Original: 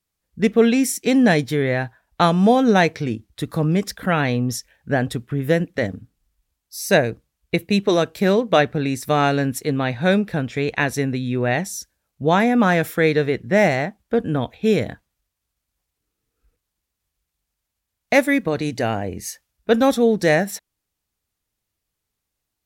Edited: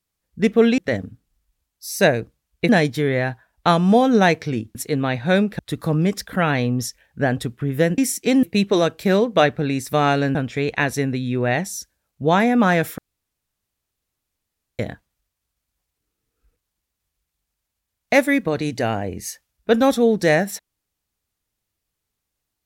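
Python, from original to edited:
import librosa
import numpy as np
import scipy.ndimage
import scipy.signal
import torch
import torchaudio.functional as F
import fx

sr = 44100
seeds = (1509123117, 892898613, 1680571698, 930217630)

y = fx.edit(x, sr, fx.swap(start_s=0.78, length_s=0.45, other_s=5.68, other_length_s=1.91),
    fx.move(start_s=9.51, length_s=0.84, to_s=3.29),
    fx.room_tone_fill(start_s=12.98, length_s=1.81), tone=tone)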